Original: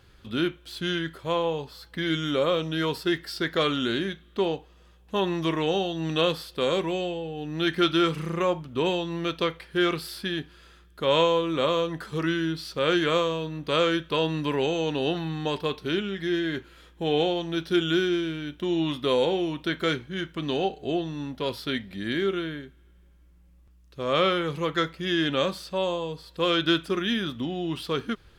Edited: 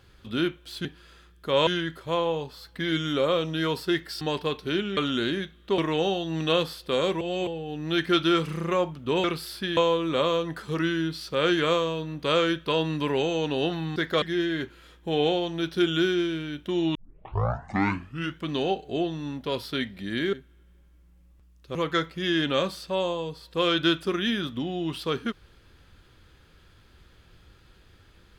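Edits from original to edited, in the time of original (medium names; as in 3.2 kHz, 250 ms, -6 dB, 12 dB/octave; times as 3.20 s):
3.39–3.65 s: swap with 15.40–16.16 s
4.46–5.47 s: delete
6.90–7.16 s: reverse
8.93–9.86 s: delete
10.39–11.21 s: move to 0.85 s
18.89 s: tape start 1.44 s
22.27–22.61 s: delete
24.03–24.58 s: delete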